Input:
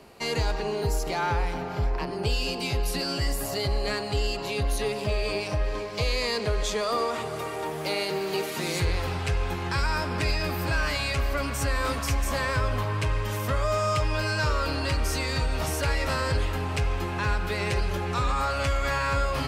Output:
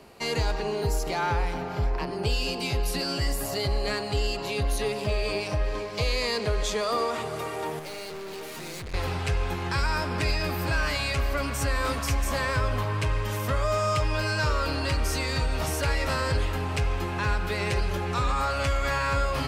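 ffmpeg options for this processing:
-filter_complex "[0:a]asettb=1/sr,asplit=3[s0][s1][s2];[s0]atrim=end=7.794[s3];[s1]atrim=start=7.79:end=8.94,asetpts=PTS-STARTPTS,afade=t=in:d=0.004:c=qsin,afade=t=out:st=1.146:d=0.004:c=qsin,aeval=exprs='(tanh(63.1*val(0)+0.35)-tanh(0.35))/63.1':c=same[s4];[s2]atrim=start=8.936[s5];[s3][s4]acrossfade=d=0.004:c1=hsin:c2=qsin[s6];[s6][s5]acrossfade=d=0.004:c1=qsin:c2=hsin"

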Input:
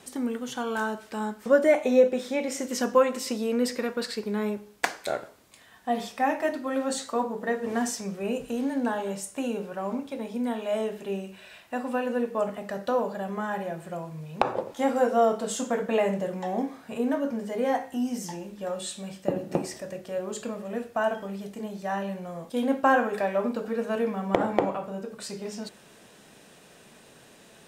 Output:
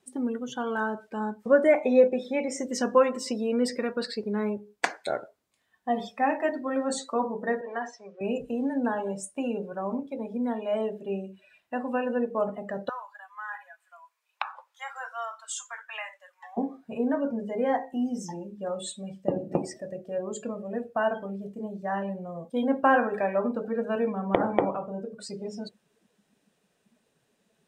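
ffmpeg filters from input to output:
-filter_complex "[0:a]asettb=1/sr,asplit=3[s0][s1][s2];[s0]atrim=end=7.614[s3];[s1]atrim=start=7.61:end=8.21,asetpts=PTS-STARTPTS,afade=t=in:d=0.004:c=qsin,afade=t=out:st=0.596:d=0.004:c=qsin,highpass=560,lowpass=3500[s4];[s2]atrim=start=8.206[s5];[s3][s4]acrossfade=d=0.004:c1=hsin:c2=qsin[s6];[s6][s5]acrossfade=d=0.004:c1=qsin:c2=hsin,asettb=1/sr,asplit=3[s7][s8][s9];[s7]atrim=end=12.894[s10];[s8]atrim=start=12.89:end=16.57,asetpts=PTS-STARTPTS,afade=t=in:d=0.004:c=qsin,afade=t=out:st=3.676:d=0.004:c=qsin,highpass=f=1100:w=0.5412,highpass=f=1100:w=1.3066[s11];[s9]atrim=start=16.566[s12];[s10][s11]acrossfade=d=0.004:c1=hsin:c2=qsin[s13];[s13][s12]acrossfade=d=0.004:c1=qsin:c2=hsin,afftdn=nr=20:nf=-39"

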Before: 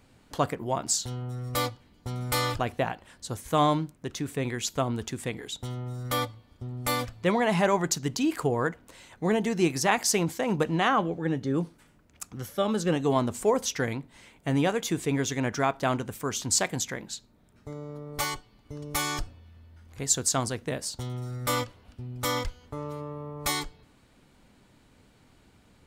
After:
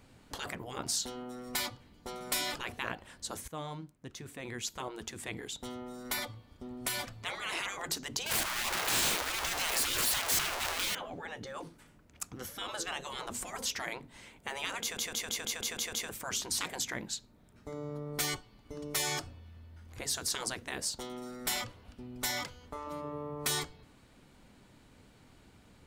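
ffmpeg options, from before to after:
-filter_complex "[0:a]asettb=1/sr,asplit=3[s0][s1][s2];[s0]atrim=end=8.264[s3];[s1]atrim=start=8.26:end=10.95,asetpts=PTS-STARTPTS,afade=t=in:d=0.004:c=qsin,afade=t=out:st=2.686:d=0.004:c=qsin,aeval=exprs='val(0)+0.5*0.0841*sgn(val(0))':c=same[s4];[s2]atrim=start=10.946[s5];[s3][s4]acrossfade=d=0.004:c1=hsin:c2=qsin[s6];[s6][s5]acrossfade=d=0.004:c1=qsin:c2=hsin,asplit=10[s7][s8][s9][s10][s11][s12][s13][s14][s15][s16];[s7]atrim=end=3.48,asetpts=PTS-STARTPTS,afade=t=out:st=3.476:d=0.004:c=hsin:silence=0.125893[s17];[s8]atrim=start=3.48:end=14.972,asetpts=PTS-STARTPTS,afade=t=in:d=2.63:silence=0.125893[s18];[s9]atrim=start=14.808:end=14.972[s19];[s10]atrim=start=14.808:end=14.972[s20];[s11]atrim=start=14.808:end=14.972[s21];[s12]atrim=start=14.808:end=14.972[s22];[s13]atrim=start=14.808:end=14.972[s23];[s14]atrim=start=14.808:end=14.972[s24];[s15]atrim=start=14.808:end=14.972[s25];[s16]atrim=start=16.088[s26];[s17][s18]concat=n=2:v=0:a=1[s27];[s27][s19]acrossfade=d=0.004:c1=hsin:c2=hsin[s28];[s28][s20]acrossfade=d=0.004:c1=hsin:c2=hsin[s29];[s29][s21]acrossfade=d=0.004:c1=hsin:c2=hsin[s30];[s30][s22]acrossfade=d=0.004:c1=hsin:c2=hsin[s31];[s31][s23]acrossfade=d=0.004:c1=hsin:c2=hsin[s32];[s32][s24]acrossfade=d=0.004:c1=hsin:c2=hsin[s33];[s33][s25]acrossfade=d=0.004:c1=hsin:c2=hsin[s34];[s34][s26]acrossfade=d=0.004:c1=hsin:c2=hsin,afftfilt=real='re*lt(hypot(re,im),0.0891)':imag='im*lt(hypot(re,im),0.0891)':win_size=1024:overlap=0.75"

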